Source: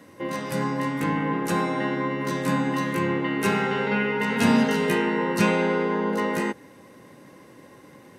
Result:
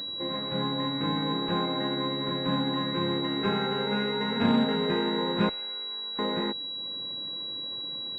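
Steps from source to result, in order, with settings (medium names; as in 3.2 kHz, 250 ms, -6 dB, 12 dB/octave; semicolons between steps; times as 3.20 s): upward compressor, threshold -39 dBFS; 5.49–6.19 s: differentiator; class-D stage that switches slowly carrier 3.9 kHz; trim -4 dB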